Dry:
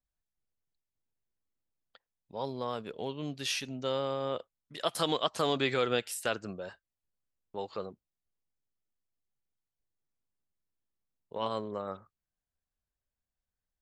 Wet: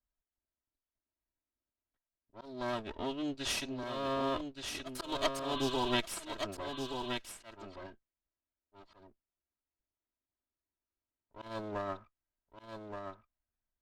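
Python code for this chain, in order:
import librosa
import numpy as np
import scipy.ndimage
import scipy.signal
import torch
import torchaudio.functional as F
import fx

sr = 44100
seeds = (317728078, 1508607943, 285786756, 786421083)

y = fx.lower_of_two(x, sr, delay_ms=3.1)
y = fx.env_lowpass(y, sr, base_hz=1900.0, full_db=-30.0)
y = fx.auto_swell(y, sr, attack_ms=273.0)
y = fx.spec_repair(y, sr, seeds[0], start_s=5.57, length_s=0.33, low_hz=1000.0, high_hz=4300.0, source='before')
y = y + 10.0 ** (-6.0 / 20.0) * np.pad(y, (int(1174 * sr / 1000.0), 0))[:len(y)]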